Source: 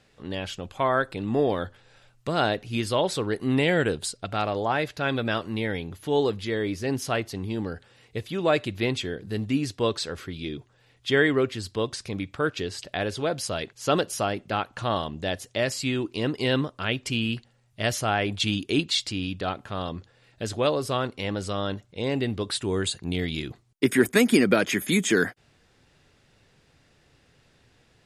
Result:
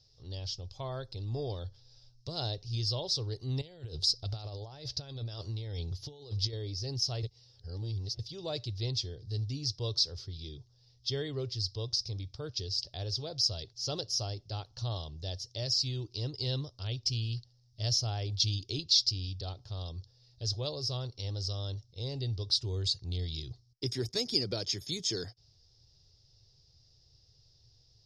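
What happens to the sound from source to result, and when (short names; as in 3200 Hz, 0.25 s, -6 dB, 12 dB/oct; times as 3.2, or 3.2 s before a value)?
3.61–6.53 negative-ratio compressor -32 dBFS
7.23–8.19 reverse
whole clip: EQ curve 120 Hz 0 dB, 210 Hz -23 dB, 400 Hz -14 dB, 850 Hz -17 dB, 1600 Hz -27 dB, 2500 Hz -22 dB, 5300 Hz +11 dB, 7800 Hz -20 dB, 12000 Hz -24 dB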